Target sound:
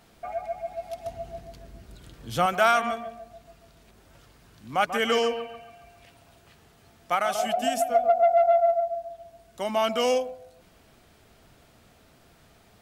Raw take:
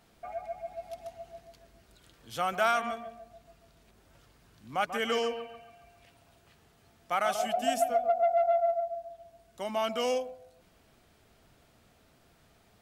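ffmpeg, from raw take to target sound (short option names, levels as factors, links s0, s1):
-filter_complex "[0:a]asettb=1/sr,asplit=3[s0][s1][s2];[s0]atrim=end=1.064[s3];[s1]atrim=start=1.06:end=2.46,asetpts=PTS-STARTPTS,afade=t=in:d=0.004:c=qsin,afade=t=out:st=1.396:d=0.004:c=qsin,lowshelf=f=340:g=10.5[s4];[s2]atrim=start=2.456[s5];[s3][s4]acrossfade=d=0.004:c1=hsin:c2=qsin[s6];[s6][s5]acrossfade=d=0.004:c1=qsin:c2=hsin,asettb=1/sr,asplit=3[s7][s8][s9];[s7]atrim=end=7.144[s10];[s8]atrim=start=7.14:end=7.95,asetpts=PTS-STARTPTS,afade=t=in:d=0.004:c=qsin,afade=t=out:st=0.806:d=0.004:c=qsin,acompressor=threshold=0.0447:ratio=6[s11];[s9]atrim=start=7.946[s12];[s10][s11]acrossfade=d=0.004:c1=hsin:c2=qsin[s13];[s13][s12]acrossfade=d=0.004:c1=qsin:c2=hsin,volume=2"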